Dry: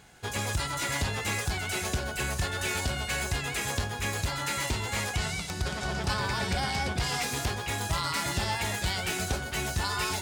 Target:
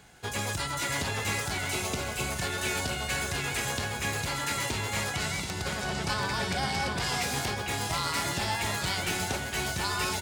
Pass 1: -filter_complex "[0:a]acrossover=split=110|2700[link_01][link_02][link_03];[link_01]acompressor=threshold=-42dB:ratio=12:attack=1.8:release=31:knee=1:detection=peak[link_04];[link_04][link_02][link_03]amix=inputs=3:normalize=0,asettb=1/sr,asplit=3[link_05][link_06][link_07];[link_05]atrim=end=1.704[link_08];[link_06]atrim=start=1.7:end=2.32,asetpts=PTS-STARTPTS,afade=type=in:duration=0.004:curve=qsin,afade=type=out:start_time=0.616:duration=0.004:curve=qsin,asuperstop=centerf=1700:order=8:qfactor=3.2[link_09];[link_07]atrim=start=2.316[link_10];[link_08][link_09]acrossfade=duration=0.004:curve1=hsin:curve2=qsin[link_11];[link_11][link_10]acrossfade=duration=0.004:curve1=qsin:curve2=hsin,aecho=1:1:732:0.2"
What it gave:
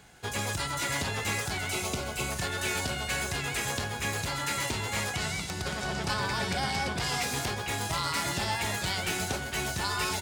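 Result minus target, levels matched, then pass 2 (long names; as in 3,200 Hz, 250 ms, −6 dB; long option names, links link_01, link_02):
echo-to-direct −6 dB
-filter_complex "[0:a]acrossover=split=110|2700[link_01][link_02][link_03];[link_01]acompressor=threshold=-42dB:ratio=12:attack=1.8:release=31:knee=1:detection=peak[link_04];[link_04][link_02][link_03]amix=inputs=3:normalize=0,asettb=1/sr,asplit=3[link_05][link_06][link_07];[link_05]atrim=end=1.704[link_08];[link_06]atrim=start=1.7:end=2.32,asetpts=PTS-STARTPTS,afade=type=in:duration=0.004:curve=qsin,afade=type=out:start_time=0.616:duration=0.004:curve=qsin,asuperstop=centerf=1700:order=8:qfactor=3.2[link_09];[link_07]atrim=start=2.316[link_10];[link_08][link_09]acrossfade=duration=0.004:curve1=hsin:curve2=qsin[link_11];[link_11][link_10]acrossfade=duration=0.004:curve1=qsin:curve2=hsin,aecho=1:1:732:0.422"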